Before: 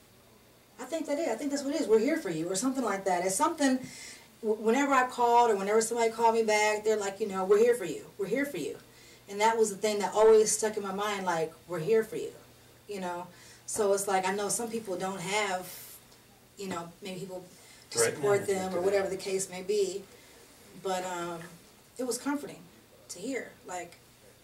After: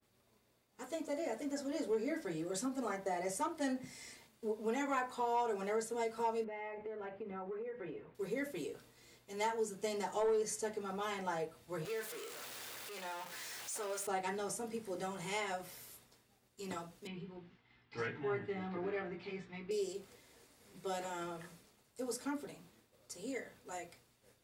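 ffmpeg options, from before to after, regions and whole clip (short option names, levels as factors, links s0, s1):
-filter_complex "[0:a]asettb=1/sr,asplit=3[s0][s1][s2];[s0]atrim=end=6.444[s3];[s1]atrim=start=6.44:end=8.15,asetpts=PTS-STARTPTS,afade=t=in:d=0.004:c=qsin,afade=t=out:st=1.706:d=0.004:c=qsin,lowpass=f=2400:w=0.5412,lowpass=f=2400:w=1.3066,acompressor=threshold=0.0224:ratio=12:attack=3.2:release=140:knee=1:detection=peak[s4];[s2]atrim=start=8.146[s5];[s3][s4]acrossfade=d=0.004:c1=hsin:c2=qsin[s6];[s6][s5]acrossfade=d=0.004:c1=qsin:c2=hsin,asettb=1/sr,asplit=3[s7][s8][s9];[s7]atrim=end=11.854[s10];[s8]atrim=start=11.85:end=14.07,asetpts=PTS-STARTPTS,afade=t=in:d=0.004:c=qsin,afade=t=out:st=2.216:d=0.004:c=qsin,aeval=exprs='val(0)+0.5*0.0282*sgn(val(0))':c=same,highpass=f=1300:p=1[s11];[s9]atrim=start=14.066[s12];[s10][s11]acrossfade=d=0.004:c1=hsin:c2=qsin[s13];[s13][s12]acrossfade=d=0.004:c1=qsin:c2=hsin,asettb=1/sr,asplit=3[s14][s15][s16];[s14]atrim=end=17.074[s17];[s15]atrim=start=17.07:end=19.71,asetpts=PTS-STARTPTS,afade=t=in:d=0.004:c=qsin,afade=t=out:st=2.636:d=0.004:c=qsin,lowpass=f=3200:w=0.5412,lowpass=f=3200:w=1.3066,equalizer=f=550:t=o:w=0.57:g=-13.5,asplit=2[s18][s19];[s19]adelay=17,volume=0.562[s20];[s18][s20]amix=inputs=2:normalize=0,atrim=end_sample=116424[s21];[s16]atrim=start=19.706[s22];[s17][s21]acrossfade=d=0.004:c1=hsin:c2=qsin[s23];[s23][s22]acrossfade=d=0.004:c1=qsin:c2=hsin,agate=range=0.0224:threshold=0.00282:ratio=3:detection=peak,acompressor=threshold=0.0398:ratio=2,adynamicequalizer=threshold=0.00447:dfrequency=3500:dqfactor=0.7:tfrequency=3500:tqfactor=0.7:attack=5:release=100:ratio=0.375:range=2:mode=cutabove:tftype=highshelf,volume=0.447"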